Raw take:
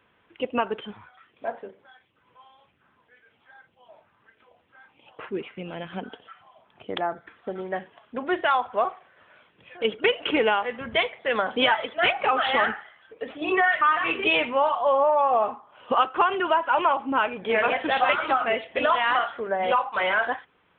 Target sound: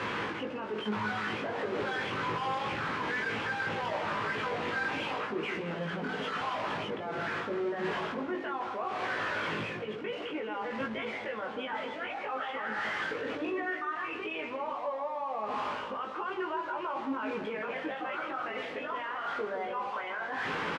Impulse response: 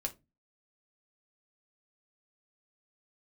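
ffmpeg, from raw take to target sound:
-filter_complex "[0:a]aeval=exprs='val(0)+0.5*0.0422*sgn(val(0))':channel_layout=same,equalizer=frequency=690:width=5.5:gain=-6.5,bandreject=frequency=50:width_type=h:width=6,bandreject=frequency=100:width_type=h:width=6,bandreject=frequency=150:width_type=h:width=6,bandreject=frequency=200:width_type=h:width=6,bandreject=frequency=250:width_type=h:width=6,areverse,acompressor=threshold=-31dB:ratio=6,areverse,alimiter=level_in=6dB:limit=-24dB:level=0:latency=1:release=113,volume=-6dB,highpass=110,lowpass=2500,asplit=2[link_01][link_02];[link_02]adelay=19,volume=-2.5dB[link_03];[link_01][link_03]amix=inputs=2:normalize=0,asplit=2[link_04][link_05];[link_05]adelay=164,lowpass=frequency=950:poles=1,volume=-6dB,asplit=2[link_06][link_07];[link_07]adelay=164,lowpass=frequency=950:poles=1,volume=0.48,asplit=2[link_08][link_09];[link_09]adelay=164,lowpass=frequency=950:poles=1,volume=0.48,asplit=2[link_10][link_11];[link_11]adelay=164,lowpass=frequency=950:poles=1,volume=0.48,asplit=2[link_12][link_13];[link_13]adelay=164,lowpass=frequency=950:poles=1,volume=0.48,asplit=2[link_14][link_15];[link_15]adelay=164,lowpass=frequency=950:poles=1,volume=0.48[link_16];[link_04][link_06][link_08][link_10][link_12][link_14][link_16]amix=inputs=7:normalize=0"

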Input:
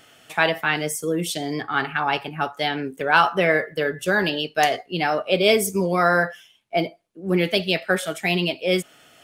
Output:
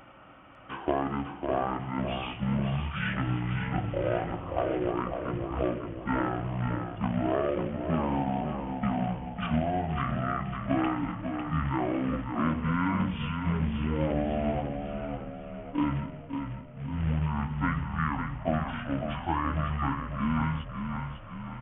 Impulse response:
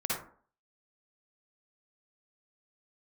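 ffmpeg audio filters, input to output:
-filter_complex "[0:a]equalizer=frequency=330:width=2.3:gain=3,bandreject=frequency=50:width_type=h:width=6,bandreject=frequency=100:width_type=h:width=6,bandreject=frequency=150:width_type=h:width=6,bandreject=frequency=200:width_type=h:width=6,bandreject=frequency=250:width_type=h:width=6,bandreject=frequency=300:width_type=h:width=6,bandreject=frequency=350:width_type=h:width=6,bandreject=frequency=400:width_type=h:width=6,bandreject=frequency=450:width_type=h:width=6,acompressor=threshold=-27dB:ratio=5,acrusher=bits=3:mode=log:mix=0:aa=0.000001,aresample=16000,aresample=44100,asplit=8[link_01][link_02][link_03][link_04][link_05][link_06][link_07][link_08];[link_02]adelay=235,afreqshift=-37,volume=-6.5dB[link_09];[link_03]adelay=470,afreqshift=-74,volume=-12dB[link_10];[link_04]adelay=705,afreqshift=-111,volume=-17.5dB[link_11];[link_05]adelay=940,afreqshift=-148,volume=-23dB[link_12];[link_06]adelay=1175,afreqshift=-185,volume=-28.6dB[link_13];[link_07]adelay=1410,afreqshift=-222,volume=-34.1dB[link_14];[link_08]adelay=1645,afreqshift=-259,volume=-39.6dB[link_15];[link_01][link_09][link_10][link_11][link_12][link_13][link_14][link_15]amix=inputs=8:normalize=0,asetrate=18846,aresample=44100"

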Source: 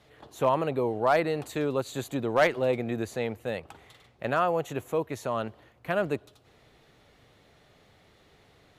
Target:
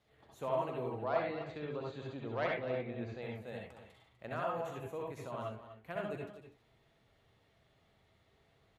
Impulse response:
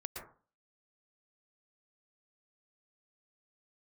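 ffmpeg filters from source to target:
-filter_complex "[0:a]asettb=1/sr,asplit=3[link_01][link_02][link_03];[link_01]atrim=end=1.044[link_04];[link_02]atrim=start=1.04:end=3.22,asetpts=PTS-STARTPTS,afade=type=in:duration=0.004:curve=qsin,afade=type=out:start_time=2.176:duration=0.004:curve=qsin,lowpass=frequency=4700:width=0.5412,lowpass=frequency=4700:width=1.3066[link_05];[link_03]atrim=start=3.216[link_06];[link_04][link_05]acrossfade=duration=0.004:curve1=hsin:curve2=qsin[link_07];[link_07][link_06]acrossfade=duration=0.004:curve1=qsin:curve2=hsin,aecho=1:1:248:0.237[link_08];[1:a]atrim=start_sample=2205,asetrate=79380,aresample=44100[link_09];[link_08][link_09]afir=irnorm=-1:irlink=0,volume=-5.5dB"

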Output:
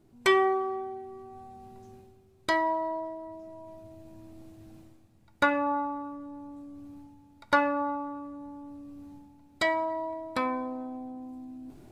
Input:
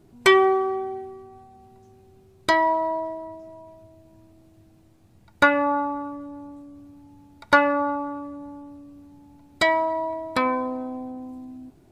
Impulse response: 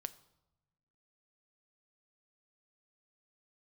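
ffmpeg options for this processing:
-filter_complex "[0:a]areverse,acompressor=mode=upward:threshold=-33dB:ratio=2.5,areverse[link_01];[1:a]atrim=start_sample=2205,asetrate=70560,aresample=44100[link_02];[link_01][link_02]afir=irnorm=-1:irlink=0"

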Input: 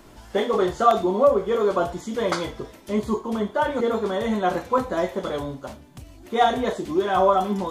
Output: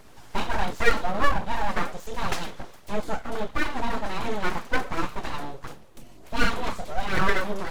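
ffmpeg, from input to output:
ffmpeg -i in.wav -af "aeval=exprs='abs(val(0))':channel_layout=same,aphaser=in_gain=1:out_gain=1:delay=4.6:decay=0.27:speed=1.4:type=triangular,volume=-1.5dB" out.wav

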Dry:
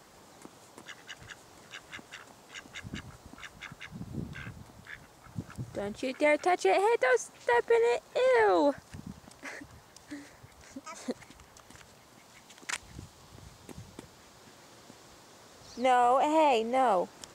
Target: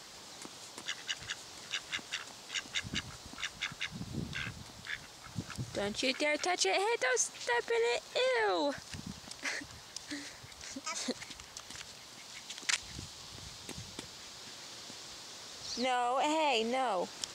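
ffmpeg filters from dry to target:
ffmpeg -i in.wav -af "alimiter=level_in=1dB:limit=-24dB:level=0:latency=1:release=24,volume=-1dB,equalizer=frequency=4400:width_type=o:width=2.2:gain=13.5,volume=-1dB" out.wav

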